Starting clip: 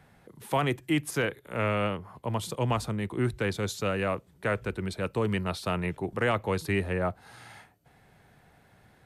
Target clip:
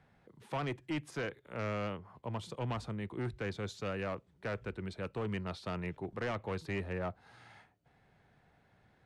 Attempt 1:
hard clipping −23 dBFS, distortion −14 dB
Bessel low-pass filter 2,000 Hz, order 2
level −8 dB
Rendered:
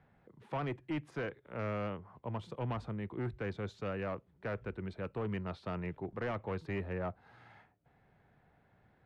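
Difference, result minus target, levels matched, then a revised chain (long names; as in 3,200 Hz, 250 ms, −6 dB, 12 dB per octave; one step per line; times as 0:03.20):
4,000 Hz band −6.0 dB
hard clipping −23 dBFS, distortion −14 dB
Bessel low-pass filter 4,800 Hz, order 2
level −8 dB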